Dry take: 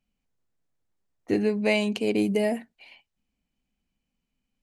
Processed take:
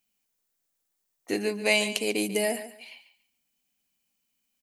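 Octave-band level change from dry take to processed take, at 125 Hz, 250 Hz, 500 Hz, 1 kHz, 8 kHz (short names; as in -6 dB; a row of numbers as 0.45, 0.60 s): n/a, -6.5 dB, -2.5 dB, -0.5 dB, +12.5 dB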